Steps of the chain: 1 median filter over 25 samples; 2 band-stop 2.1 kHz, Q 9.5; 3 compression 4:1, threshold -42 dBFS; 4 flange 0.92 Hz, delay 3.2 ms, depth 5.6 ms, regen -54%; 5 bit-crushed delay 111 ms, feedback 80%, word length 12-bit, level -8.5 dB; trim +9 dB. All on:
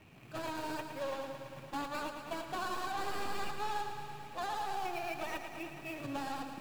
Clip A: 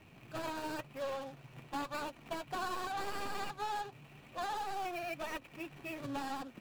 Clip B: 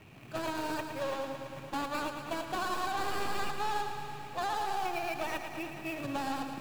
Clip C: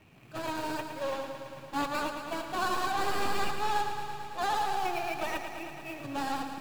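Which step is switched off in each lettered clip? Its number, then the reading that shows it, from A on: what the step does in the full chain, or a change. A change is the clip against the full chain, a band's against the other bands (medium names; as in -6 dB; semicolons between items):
5, crest factor change +2.0 dB; 4, loudness change +4.0 LU; 3, 125 Hz band -2.5 dB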